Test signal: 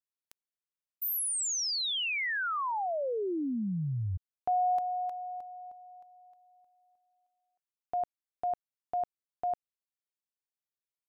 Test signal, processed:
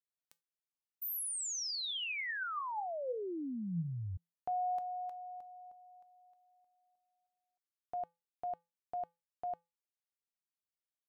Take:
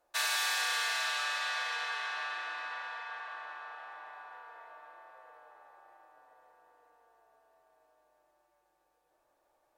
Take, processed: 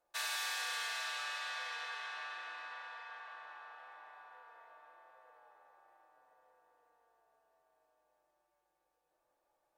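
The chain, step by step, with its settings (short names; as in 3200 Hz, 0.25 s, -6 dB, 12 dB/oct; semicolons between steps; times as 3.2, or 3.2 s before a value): resonator 170 Hz, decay 0.25 s, harmonics odd, mix 60%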